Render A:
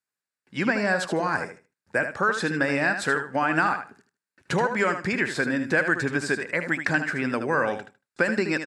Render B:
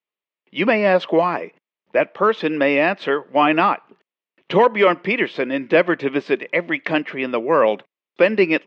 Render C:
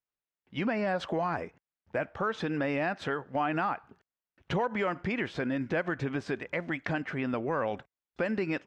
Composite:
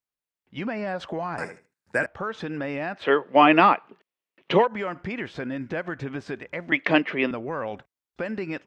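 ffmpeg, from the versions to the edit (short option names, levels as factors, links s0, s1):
-filter_complex "[1:a]asplit=2[s0][s1];[2:a]asplit=4[s2][s3][s4][s5];[s2]atrim=end=1.382[s6];[0:a]atrim=start=1.378:end=2.062[s7];[s3]atrim=start=2.058:end=3.12[s8];[s0]atrim=start=2.96:end=4.69[s9];[s4]atrim=start=4.53:end=6.722[s10];[s1]atrim=start=6.718:end=7.312[s11];[s5]atrim=start=7.308[s12];[s6][s7]acrossfade=d=0.004:c1=hsin:c2=hsin[s13];[s13][s8]acrossfade=d=0.004:c1=hsin:c2=hsin[s14];[s14][s9]acrossfade=d=0.16:c1=tri:c2=tri[s15];[s15][s10]acrossfade=d=0.16:c1=tri:c2=tri[s16];[s16][s11]acrossfade=d=0.004:c1=hsin:c2=hsin[s17];[s17][s12]acrossfade=d=0.004:c1=hsin:c2=hsin"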